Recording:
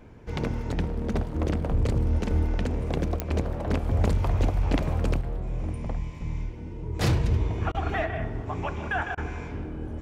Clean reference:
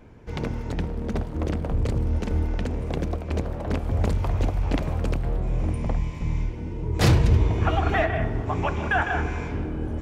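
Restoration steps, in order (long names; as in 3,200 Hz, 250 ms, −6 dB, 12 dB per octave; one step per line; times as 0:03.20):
click removal
repair the gap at 0:07.72/0:09.15, 24 ms
level correction +5.5 dB, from 0:05.21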